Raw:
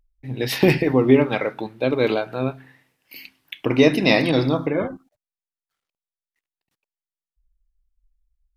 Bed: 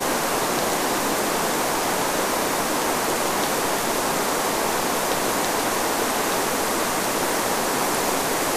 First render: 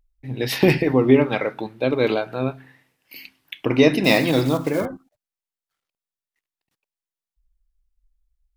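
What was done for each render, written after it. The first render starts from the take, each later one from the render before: 4.04–4.86 s: block-companded coder 5-bit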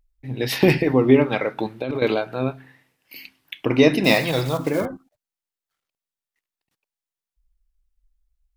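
1.58–2.02 s: compressor with a negative ratio -25 dBFS; 4.14–4.59 s: peaking EQ 280 Hz -13.5 dB 0.57 oct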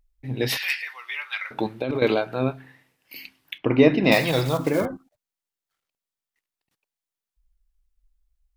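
0.57–1.51 s: high-pass 1.5 kHz 24 dB/octave; 3.58–4.12 s: distance through air 260 m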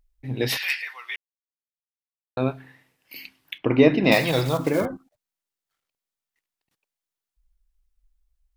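1.16–2.37 s: mute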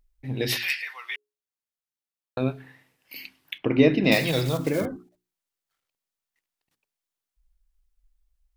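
hum notches 60/120/180/240/300/360/420 Hz; dynamic bell 960 Hz, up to -8 dB, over -37 dBFS, Q 1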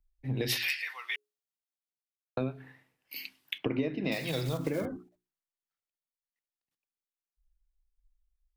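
compression 20:1, threshold -28 dBFS, peak gain reduction 17.5 dB; three bands expanded up and down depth 40%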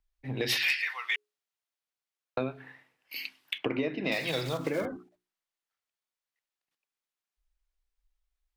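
overdrive pedal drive 11 dB, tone 3.9 kHz, clips at -12.5 dBFS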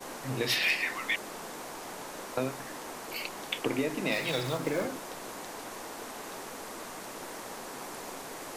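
add bed -19 dB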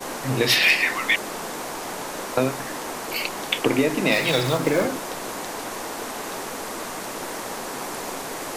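trim +10 dB

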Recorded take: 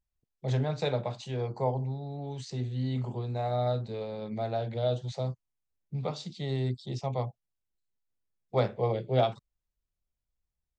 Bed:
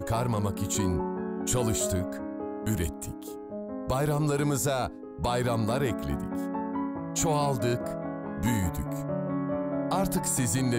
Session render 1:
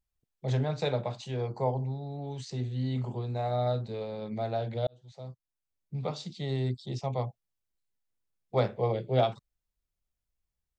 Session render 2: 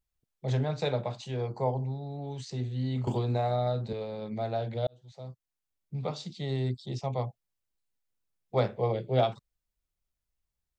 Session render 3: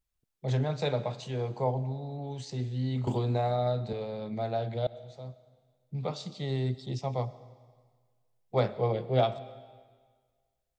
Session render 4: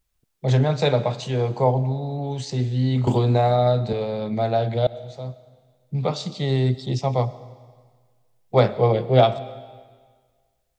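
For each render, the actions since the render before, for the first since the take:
4.87–6.11 s: fade in
3.07–3.93 s: three bands compressed up and down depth 100%
algorithmic reverb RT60 1.6 s, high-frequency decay 1×, pre-delay 65 ms, DRR 16.5 dB
trim +10 dB

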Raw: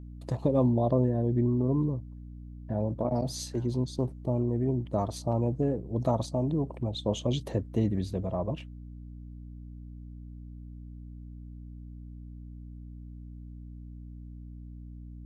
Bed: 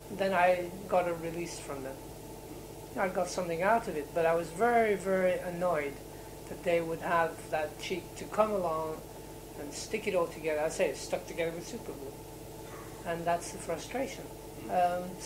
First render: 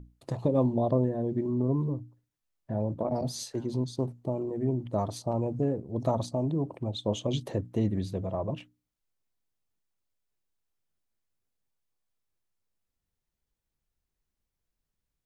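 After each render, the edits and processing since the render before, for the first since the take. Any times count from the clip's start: hum notches 60/120/180/240/300 Hz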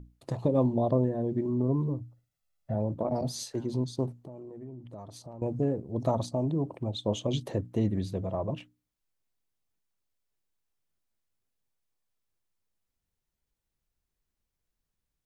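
2.01–2.75 s: comb 1.5 ms; 4.14–5.42 s: compression 3:1, threshold -45 dBFS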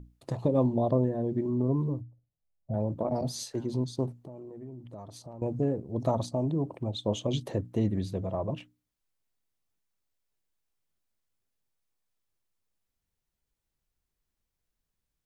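2.01–2.74 s: Gaussian low-pass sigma 11 samples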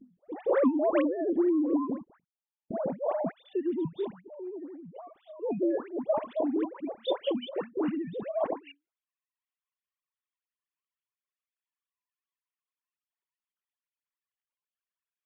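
formants replaced by sine waves; phase dispersion highs, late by 114 ms, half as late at 1.2 kHz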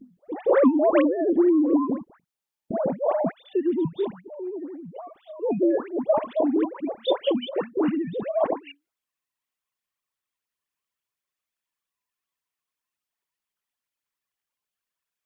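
trim +6.5 dB

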